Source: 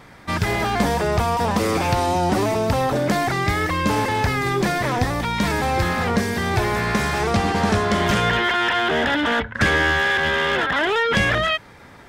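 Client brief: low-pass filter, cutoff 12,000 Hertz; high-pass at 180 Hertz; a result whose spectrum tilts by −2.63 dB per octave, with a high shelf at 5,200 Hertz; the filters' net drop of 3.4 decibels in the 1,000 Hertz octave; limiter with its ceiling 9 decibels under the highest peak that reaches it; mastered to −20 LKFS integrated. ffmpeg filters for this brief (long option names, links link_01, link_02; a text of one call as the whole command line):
ffmpeg -i in.wav -af "highpass=180,lowpass=12000,equalizer=frequency=1000:width_type=o:gain=-4.5,highshelf=frequency=5200:gain=-4,volume=4.5dB,alimiter=limit=-12.5dB:level=0:latency=1" out.wav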